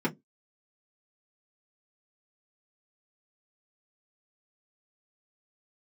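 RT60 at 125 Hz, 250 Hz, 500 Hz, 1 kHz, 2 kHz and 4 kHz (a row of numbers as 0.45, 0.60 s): 0.20, 0.25, 0.20, 0.10, 0.10, 0.10 s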